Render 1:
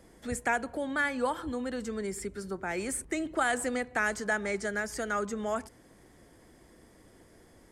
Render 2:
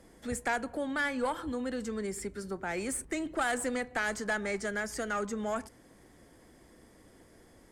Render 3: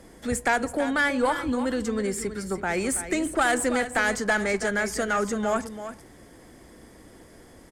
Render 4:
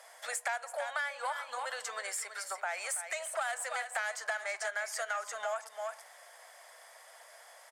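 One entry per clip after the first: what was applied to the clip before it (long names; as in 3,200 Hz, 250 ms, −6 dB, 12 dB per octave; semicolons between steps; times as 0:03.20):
tube saturation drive 23 dB, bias 0.25; on a send at −19.5 dB: convolution reverb, pre-delay 4 ms
single-tap delay 329 ms −11 dB; level +8 dB
elliptic high-pass filter 620 Hz, stop band 50 dB; downward compressor 4 to 1, threshold −36 dBFS, peak gain reduction 14 dB; level +1.5 dB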